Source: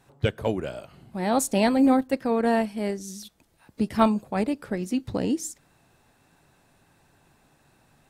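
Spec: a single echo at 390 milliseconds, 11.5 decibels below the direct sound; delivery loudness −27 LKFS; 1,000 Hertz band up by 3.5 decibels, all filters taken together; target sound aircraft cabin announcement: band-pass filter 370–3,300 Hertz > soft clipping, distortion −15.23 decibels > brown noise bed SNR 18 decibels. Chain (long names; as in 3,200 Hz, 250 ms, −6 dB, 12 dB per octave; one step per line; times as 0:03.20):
band-pass filter 370–3,300 Hz
parametric band 1,000 Hz +5 dB
single-tap delay 390 ms −11.5 dB
soft clipping −12.5 dBFS
brown noise bed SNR 18 dB
level +1 dB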